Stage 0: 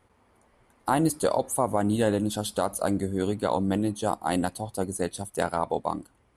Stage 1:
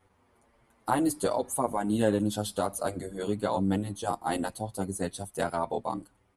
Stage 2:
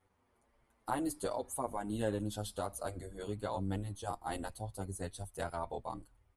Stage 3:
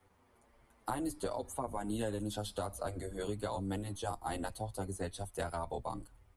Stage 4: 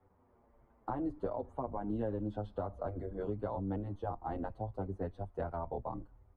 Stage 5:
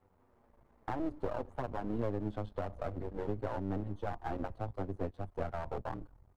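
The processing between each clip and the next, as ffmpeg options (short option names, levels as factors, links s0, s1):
-filter_complex "[0:a]asplit=2[s0][s1];[s1]adelay=7.7,afreqshift=-0.8[s2];[s0][s2]amix=inputs=2:normalize=1"
-af "asubboost=boost=8:cutoff=72,volume=0.376"
-filter_complex "[0:a]acrossover=split=95|190|4700[s0][s1][s2][s3];[s0]acompressor=threshold=0.00251:ratio=4[s4];[s1]acompressor=threshold=0.00141:ratio=4[s5];[s2]acompressor=threshold=0.00794:ratio=4[s6];[s3]acompressor=threshold=0.00158:ratio=4[s7];[s4][s5][s6][s7]amix=inputs=4:normalize=0,volume=2.11"
-af "lowpass=1000,volume=1.12"
-af "aeval=exprs='if(lt(val(0),0),0.251*val(0),val(0))':c=same,volume=1.5"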